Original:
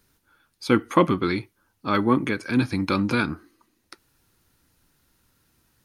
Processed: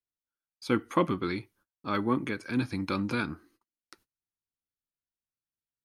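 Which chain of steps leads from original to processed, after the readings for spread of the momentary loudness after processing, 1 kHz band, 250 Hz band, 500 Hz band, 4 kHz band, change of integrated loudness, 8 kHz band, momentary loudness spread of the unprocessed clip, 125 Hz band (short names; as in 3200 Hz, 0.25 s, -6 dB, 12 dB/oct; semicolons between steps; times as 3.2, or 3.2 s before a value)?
10 LU, -7.5 dB, -7.5 dB, -7.5 dB, -7.5 dB, -7.5 dB, n/a, 10 LU, -7.5 dB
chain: gate -55 dBFS, range -30 dB; gain -7.5 dB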